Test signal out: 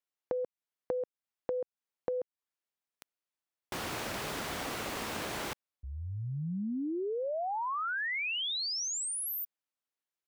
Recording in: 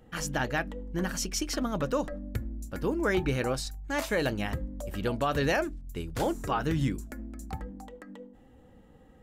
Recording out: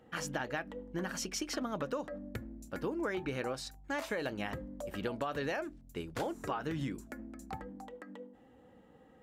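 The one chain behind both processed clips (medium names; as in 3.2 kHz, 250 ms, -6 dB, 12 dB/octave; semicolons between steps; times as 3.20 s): high-pass 280 Hz 6 dB/octave; treble shelf 4.5 kHz -8.5 dB; compression 12:1, threshold -32 dBFS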